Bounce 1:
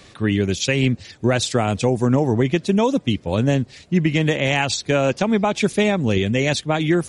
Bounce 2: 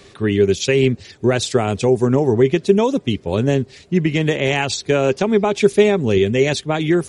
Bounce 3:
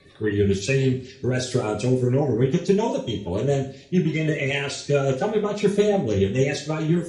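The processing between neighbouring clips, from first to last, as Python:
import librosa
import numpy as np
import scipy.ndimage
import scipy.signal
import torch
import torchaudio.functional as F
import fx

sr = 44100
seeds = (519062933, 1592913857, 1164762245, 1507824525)

y1 = fx.peak_eq(x, sr, hz=400.0, db=11.5, octaves=0.2)
y2 = fx.spec_quant(y1, sr, step_db=30)
y2 = fx.rotary(y2, sr, hz=7.0)
y2 = fx.rev_double_slope(y2, sr, seeds[0], early_s=0.44, late_s=1.8, knee_db=-28, drr_db=0.0)
y2 = y2 * 10.0 ** (-6.0 / 20.0)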